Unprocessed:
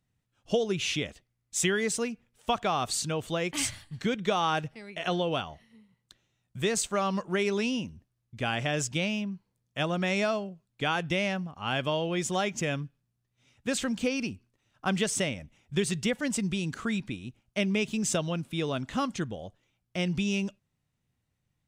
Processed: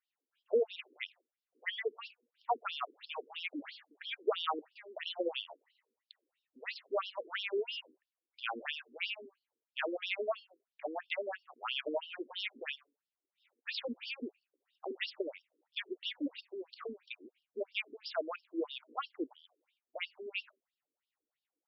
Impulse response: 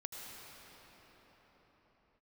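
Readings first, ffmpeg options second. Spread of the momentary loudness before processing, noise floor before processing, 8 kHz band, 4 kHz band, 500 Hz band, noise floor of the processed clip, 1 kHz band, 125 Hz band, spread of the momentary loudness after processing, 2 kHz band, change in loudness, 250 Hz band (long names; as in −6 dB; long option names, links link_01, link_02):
10 LU, −80 dBFS, below −40 dB, −7.0 dB, −7.5 dB, below −85 dBFS, −9.0 dB, below −40 dB, 11 LU, −8.0 dB, −9.5 dB, −15.5 dB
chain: -af "afftfilt=real='re*between(b*sr/1024,340*pow(4000/340,0.5+0.5*sin(2*PI*3*pts/sr))/1.41,340*pow(4000/340,0.5+0.5*sin(2*PI*3*pts/sr))*1.41)':imag='im*between(b*sr/1024,340*pow(4000/340,0.5+0.5*sin(2*PI*3*pts/sr))/1.41,340*pow(4000/340,0.5+0.5*sin(2*PI*3*pts/sr))*1.41)':win_size=1024:overlap=0.75,volume=-1dB"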